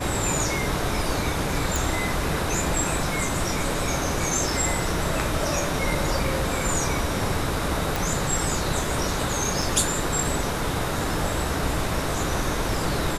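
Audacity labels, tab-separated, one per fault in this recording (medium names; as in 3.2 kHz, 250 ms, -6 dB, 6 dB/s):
1.760000	1.760000	pop
7.960000	7.960000	pop
9.620000	9.620000	dropout 4 ms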